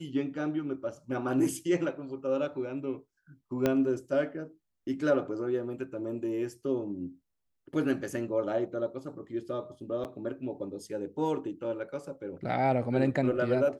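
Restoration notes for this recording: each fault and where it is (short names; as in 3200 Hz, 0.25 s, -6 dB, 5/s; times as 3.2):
3.66 pop -13 dBFS
10.04–10.05 gap 8.6 ms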